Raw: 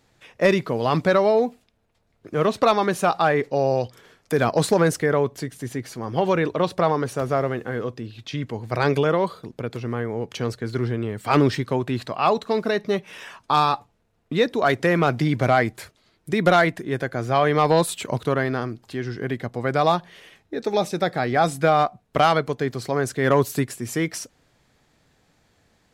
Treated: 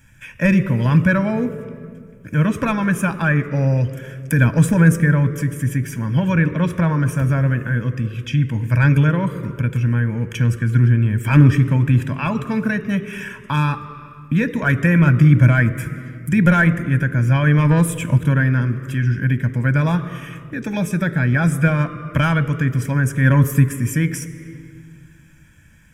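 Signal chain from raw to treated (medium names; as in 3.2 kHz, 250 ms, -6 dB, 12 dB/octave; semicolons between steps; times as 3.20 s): bass shelf 240 Hz +9.5 dB; static phaser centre 1.8 kHz, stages 4; reverberation RT60 1.7 s, pre-delay 14 ms, DRR 14 dB; tape noise reduction on one side only encoder only; trim +1.5 dB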